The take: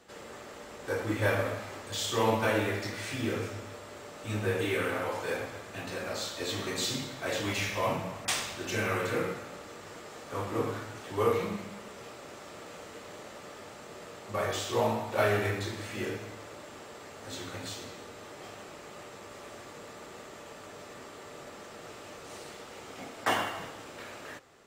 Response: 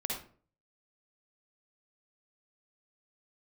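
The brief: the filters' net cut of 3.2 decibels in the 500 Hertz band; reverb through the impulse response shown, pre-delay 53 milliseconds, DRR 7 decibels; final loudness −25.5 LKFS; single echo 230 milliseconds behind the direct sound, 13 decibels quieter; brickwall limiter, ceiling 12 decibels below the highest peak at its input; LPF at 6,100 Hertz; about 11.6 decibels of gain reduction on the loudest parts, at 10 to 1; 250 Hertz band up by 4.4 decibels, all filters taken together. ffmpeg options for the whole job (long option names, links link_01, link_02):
-filter_complex "[0:a]lowpass=6100,equalizer=frequency=250:width_type=o:gain=7.5,equalizer=frequency=500:width_type=o:gain=-6,acompressor=threshold=-35dB:ratio=10,alimiter=level_in=8.5dB:limit=-24dB:level=0:latency=1,volume=-8.5dB,aecho=1:1:230:0.224,asplit=2[link_01][link_02];[1:a]atrim=start_sample=2205,adelay=53[link_03];[link_02][link_03]afir=irnorm=-1:irlink=0,volume=-10.5dB[link_04];[link_01][link_04]amix=inputs=2:normalize=0,volume=16.5dB"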